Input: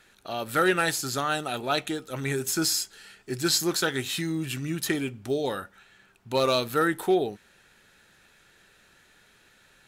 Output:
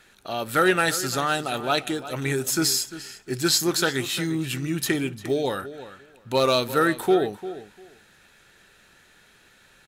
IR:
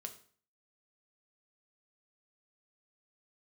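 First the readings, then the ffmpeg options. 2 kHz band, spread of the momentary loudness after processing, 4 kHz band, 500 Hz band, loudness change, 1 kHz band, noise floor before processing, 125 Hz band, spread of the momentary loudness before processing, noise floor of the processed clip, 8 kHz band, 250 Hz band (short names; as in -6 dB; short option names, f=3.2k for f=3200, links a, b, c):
+3.0 dB, 13 LU, +3.0 dB, +3.0 dB, +3.0 dB, +3.0 dB, -60 dBFS, +3.0 dB, 11 LU, -57 dBFS, +3.0 dB, +3.0 dB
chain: -filter_complex "[0:a]asplit=2[a][b];[b]adelay=348,lowpass=f=4.5k:p=1,volume=-14dB,asplit=2[c][d];[d]adelay=348,lowpass=f=4.5k:p=1,volume=0.17[e];[a][c][e]amix=inputs=3:normalize=0,volume=3dB"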